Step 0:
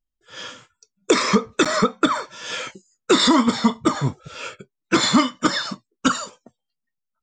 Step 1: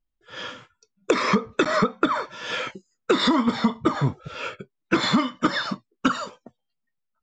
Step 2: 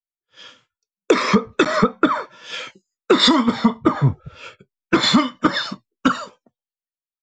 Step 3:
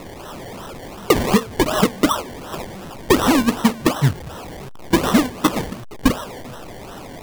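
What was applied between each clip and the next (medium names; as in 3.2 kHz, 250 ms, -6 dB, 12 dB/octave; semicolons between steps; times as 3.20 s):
Bessel low-pass 3.1 kHz, order 2; compression 6:1, threshold -19 dBFS, peak gain reduction 8.5 dB; trim +2.5 dB
three bands expanded up and down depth 100%; trim +3 dB
one-bit delta coder 64 kbps, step -27.5 dBFS; decimation with a swept rate 27×, swing 60% 2.7 Hz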